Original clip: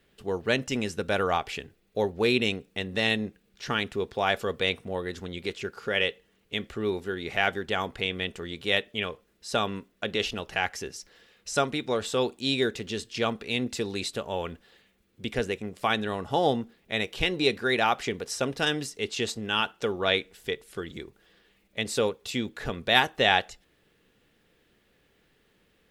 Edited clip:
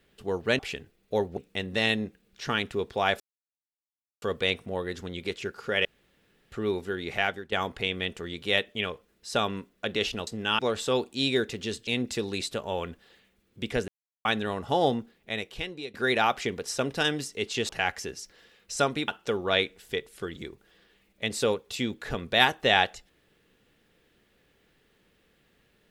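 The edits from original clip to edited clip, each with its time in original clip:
0:00.59–0:01.43: remove
0:02.21–0:02.58: remove
0:04.41: splice in silence 1.02 s
0:06.04–0:06.71: fill with room tone
0:07.33–0:07.71: fade out, to −13.5 dB
0:10.46–0:11.85: swap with 0:19.31–0:19.63
0:13.13–0:13.49: remove
0:15.50–0:15.87: silence
0:16.57–0:17.56: fade out, to −19.5 dB

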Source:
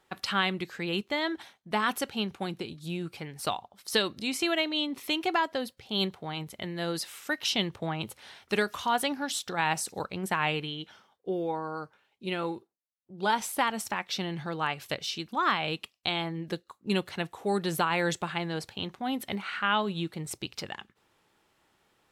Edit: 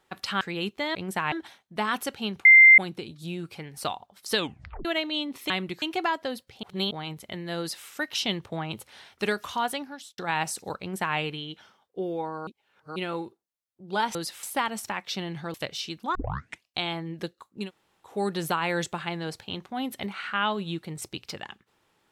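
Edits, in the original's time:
0:00.41–0:00.73: move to 0:05.12
0:02.40: insert tone 2,090 Hz −9 dBFS 0.33 s
0:03.99: tape stop 0.48 s
0:05.93–0:06.21: reverse
0:06.89–0:07.17: duplicate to 0:13.45
0:08.87–0:09.48: fade out
0:10.10–0:10.47: duplicate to 0:01.27
0:11.77–0:12.26: reverse
0:14.56–0:14.83: remove
0:15.44: tape start 0.52 s
0:16.92–0:17.36: fill with room tone, crossfade 0.16 s

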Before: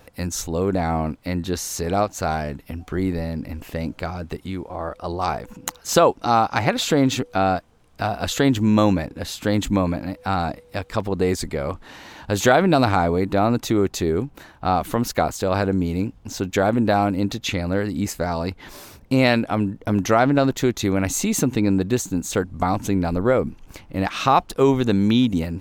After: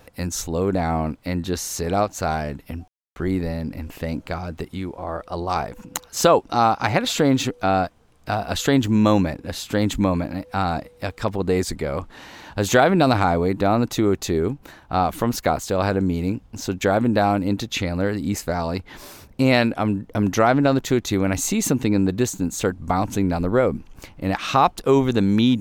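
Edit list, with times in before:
0:02.88: splice in silence 0.28 s

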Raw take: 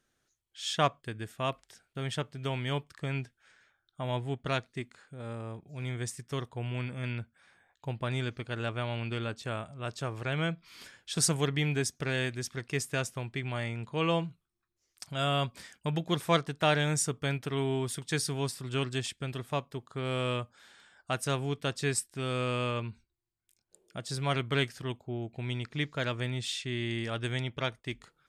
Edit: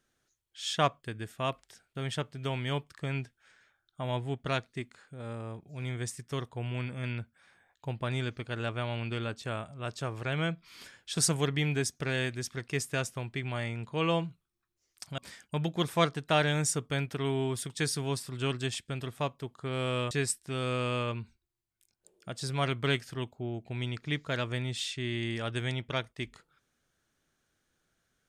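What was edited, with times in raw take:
0:15.18–0:15.50: remove
0:20.43–0:21.79: remove

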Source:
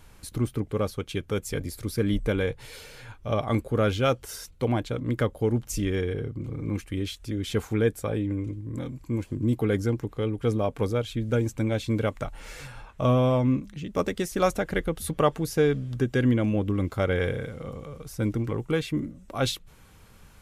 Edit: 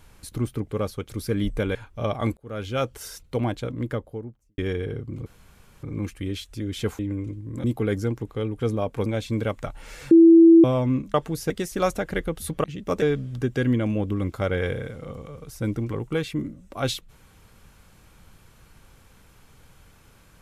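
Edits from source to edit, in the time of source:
0:01.09–0:01.78: remove
0:02.44–0:03.03: remove
0:03.65–0:04.20: fade in
0:04.85–0:05.86: fade out and dull
0:06.54: splice in room tone 0.57 s
0:07.70–0:08.19: remove
0:08.84–0:09.46: remove
0:10.88–0:11.64: remove
0:12.69–0:13.22: beep over 331 Hz −8 dBFS
0:13.72–0:14.10: swap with 0:15.24–0:15.60

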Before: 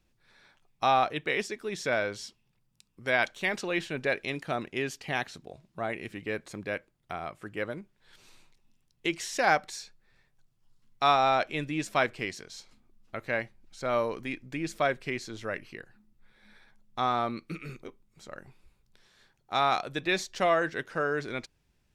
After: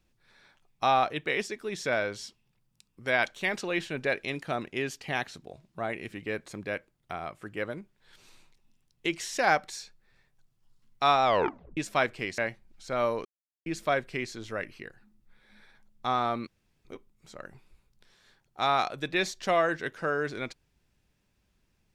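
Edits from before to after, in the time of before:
0:11.24: tape stop 0.53 s
0:12.38–0:13.31: remove
0:14.18–0:14.59: silence
0:17.40–0:17.78: fill with room tone

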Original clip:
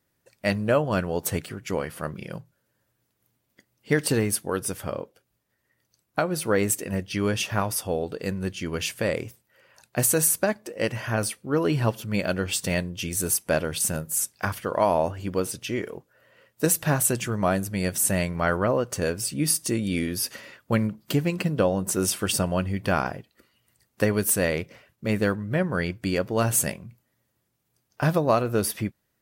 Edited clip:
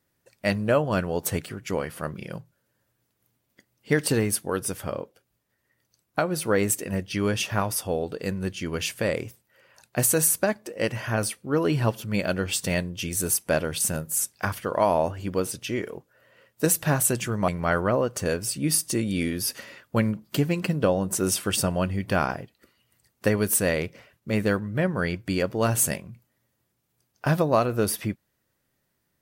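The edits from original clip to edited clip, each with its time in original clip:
0:17.48–0:18.24: remove

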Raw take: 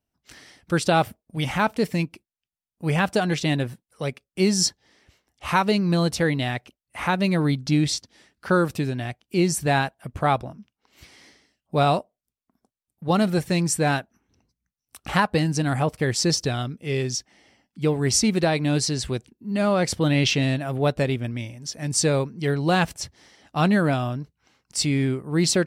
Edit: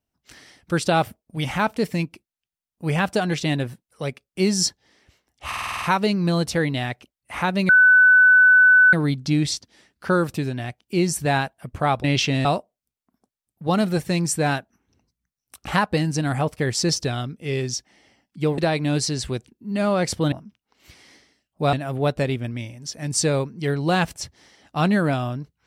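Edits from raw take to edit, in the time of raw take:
0:05.47: stutter 0.05 s, 8 plays
0:07.34: insert tone 1,500 Hz −9.5 dBFS 1.24 s
0:10.45–0:11.86: swap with 0:20.12–0:20.53
0:17.99–0:18.38: remove

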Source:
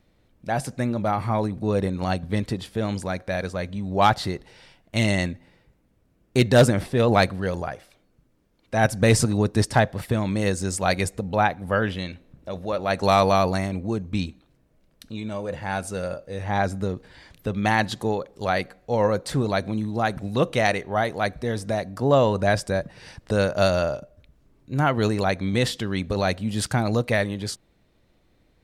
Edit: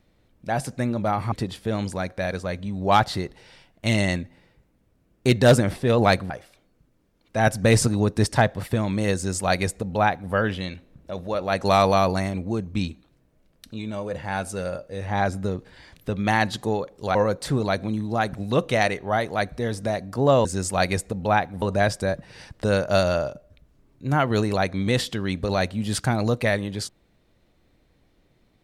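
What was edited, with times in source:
0:01.32–0:02.42: remove
0:07.40–0:07.68: remove
0:10.53–0:11.70: duplicate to 0:22.29
0:18.53–0:18.99: remove

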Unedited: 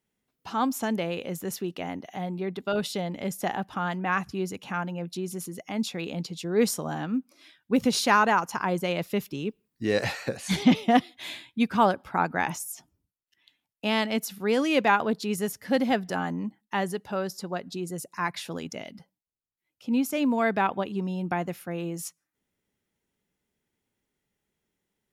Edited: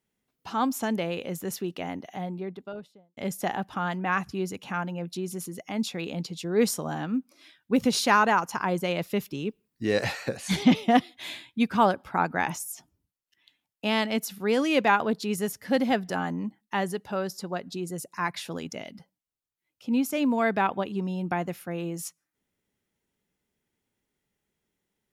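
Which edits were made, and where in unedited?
0:01.99–0:03.17: fade out and dull

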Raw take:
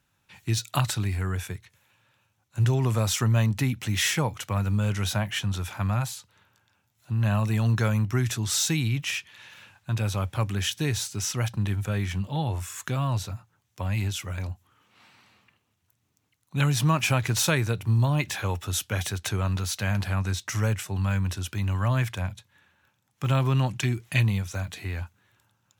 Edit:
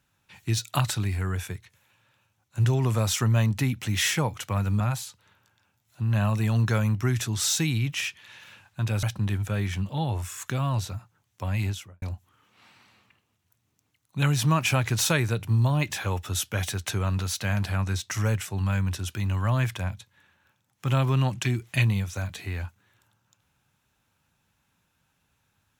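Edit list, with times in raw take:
0:04.80–0:05.90: remove
0:10.13–0:11.41: remove
0:14.03–0:14.40: fade out and dull

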